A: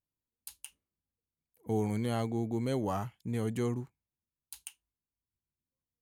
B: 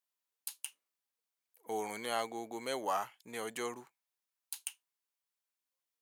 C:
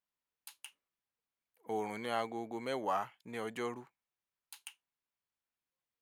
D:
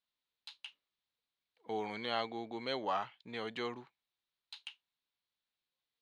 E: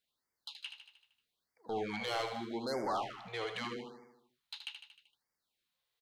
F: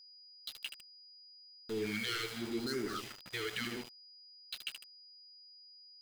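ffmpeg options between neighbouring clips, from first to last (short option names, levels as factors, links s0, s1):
-af "highpass=730,volume=1.68"
-af "bass=f=250:g=7,treble=f=4000:g=-11"
-af "lowpass=f=3900:t=q:w=3.9,volume=0.841"
-filter_complex "[0:a]asoftclip=type=tanh:threshold=0.0178,asplit=2[s0][s1];[s1]aecho=0:1:77|154|231|308|385|462|539:0.422|0.24|0.137|0.0781|0.0445|0.0254|0.0145[s2];[s0][s2]amix=inputs=2:normalize=0,afftfilt=real='re*(1-between(b*sr/1024,210*pow(3300/210,0.5+0.5*sin(2*PI*0.8*pts/sr))/1.41,210*pow(3300/210,0.5+0.5*sin(2*PI*0.8*pts/sr))*1.41))':imag='im*(1-between(b*sr/1024,210*pow(3300/210,0.5+0.5*sin(2*PI*0.8*pts/sr))/1.41,210*pow(3300/210,0.5+0.5*sin(2*PI*0.8*pts/sr))*1.41))':win_size=1024:overlap=0.75,volume=1.68"
-af "asuperstop=centerf=750:order=12:qfactor=0.89,aeval=exprs='val(0)*gte(abs(val(0)),0.00531)':c=same,aeval=exprs='val(0)+0.00126*sin(2*PI*4900*n/s)':c=same,volume=1.41"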